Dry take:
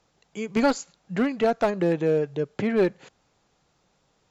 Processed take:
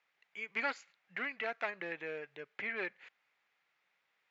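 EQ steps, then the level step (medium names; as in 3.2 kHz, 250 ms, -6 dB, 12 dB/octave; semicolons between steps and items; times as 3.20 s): band-pass filter 2.1 kHz, Q 3; distance through air 53 m; +1.5 dB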